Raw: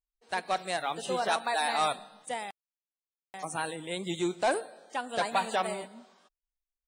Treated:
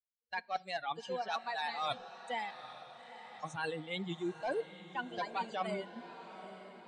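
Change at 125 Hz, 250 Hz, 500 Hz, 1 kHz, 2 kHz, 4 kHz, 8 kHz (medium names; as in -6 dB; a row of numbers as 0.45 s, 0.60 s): -3.5 dB, -5.5 dB, -7.0 dB, -7.5 dB, -6.0 dB, -7.0 dB, -18.0 dB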